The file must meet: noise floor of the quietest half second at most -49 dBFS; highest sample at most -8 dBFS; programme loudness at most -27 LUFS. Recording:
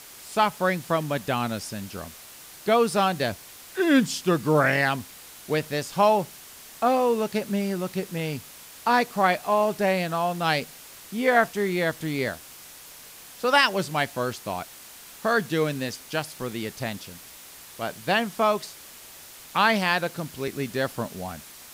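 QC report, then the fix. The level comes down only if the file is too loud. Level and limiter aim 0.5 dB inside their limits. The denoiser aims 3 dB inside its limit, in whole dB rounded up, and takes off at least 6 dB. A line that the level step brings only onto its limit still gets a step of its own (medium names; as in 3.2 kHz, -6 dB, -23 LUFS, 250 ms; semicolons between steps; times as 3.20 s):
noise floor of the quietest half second -46 dBFS: fail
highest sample -6.0 dBFS: fail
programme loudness -25.0 LUFS: fail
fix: noise reduction 6 dB, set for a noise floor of -46 dBFS; trim -2.5 dB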